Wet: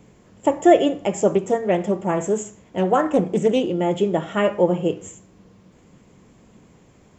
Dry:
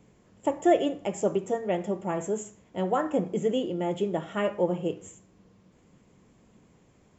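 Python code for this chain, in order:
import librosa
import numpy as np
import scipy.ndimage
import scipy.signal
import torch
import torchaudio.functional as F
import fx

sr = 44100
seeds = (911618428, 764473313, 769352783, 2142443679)

y = fx.doppler_dist(x, sr, depth_ms=0.18, at=(1.3, 3.73))
y = y * librosa.db_to_amplitude(8.0)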